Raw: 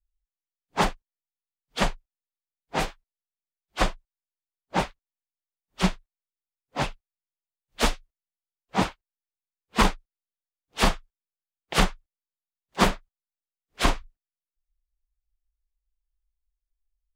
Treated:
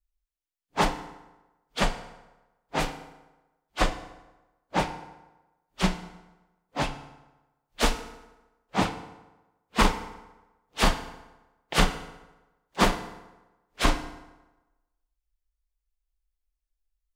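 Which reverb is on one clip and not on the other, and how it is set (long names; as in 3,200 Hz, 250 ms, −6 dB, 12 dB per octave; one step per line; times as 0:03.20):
feedback delay network reverb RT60 1.1 s, low-frequency decay 0.9×, high-frequency decay 0.7×, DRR 8 dB
level −1 dB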